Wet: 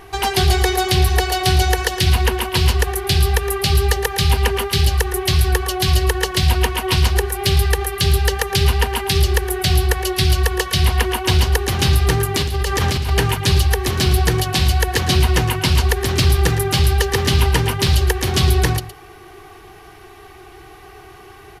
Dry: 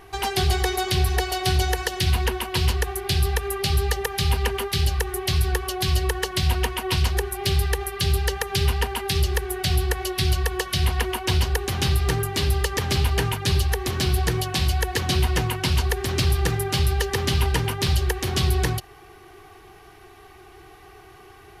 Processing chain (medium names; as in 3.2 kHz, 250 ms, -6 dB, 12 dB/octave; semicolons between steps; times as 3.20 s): 12.34–13.10 s: compressor with a negative ratio -25 dBFS, ratio -1; delay 114 ms -13.5 dB; trim +6 dB